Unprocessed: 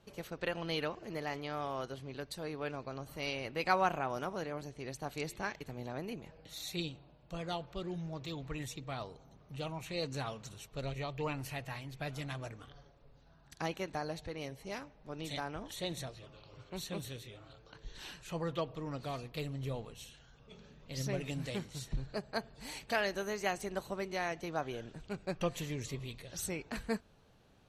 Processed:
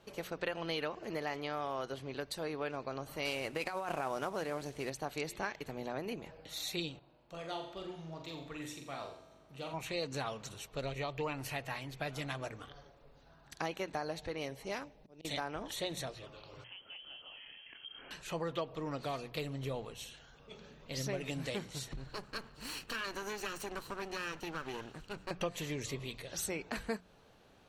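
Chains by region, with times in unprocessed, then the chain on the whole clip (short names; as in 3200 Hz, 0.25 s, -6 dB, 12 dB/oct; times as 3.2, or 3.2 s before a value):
3.25–4.9 CVSD 64 kbps + negative-ratio compressor -36 dBFS
6.99–9.74 low shelf 65 Hz -10 dB + resonator 50 Hz, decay 1.8 s + flutter echo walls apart 7.4 m, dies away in 0.48 s
14.84–15.25 bell 1300 Hz -10.5 dB 1.1 oct + auto swell 0.482 s
16.64–18.11 compressor 4:1, threshold -53 dBFS + inverted band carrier 3200 Hz
21.92–25.31 minimum comb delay 0.7 ms + compressor 2.5:1, threshold -40 dBFS
whole clip: tone controls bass -6 dB, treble -2 dB; notches 60/120/180 Hz; compressor 2.5:1, threshold -40 dBFS; gain +5 dB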